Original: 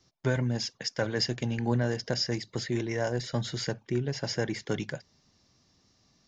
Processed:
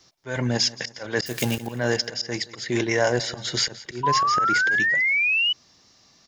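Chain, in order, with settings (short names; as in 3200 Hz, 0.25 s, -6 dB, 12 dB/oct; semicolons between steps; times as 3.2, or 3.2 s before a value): 1.26–1.67 switching spikes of -32 dBFS; low shelf 330 Hz -11.5 dB; in parallel at -0.5 dB: level quantiser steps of 13 dB; on the sum: auto swell 0.217 s; on a send: feedback echo 0.173 s, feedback 43%, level -19 dB; 4.03–5.53 on the sum: painted sound rise 970–3000 Hz -30 dBFS; gain +9 dB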